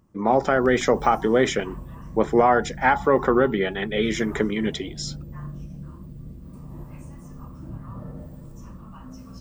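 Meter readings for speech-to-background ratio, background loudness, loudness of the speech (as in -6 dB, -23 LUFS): 18.0 dB, -39.5 LUFS, -21.5 LUFS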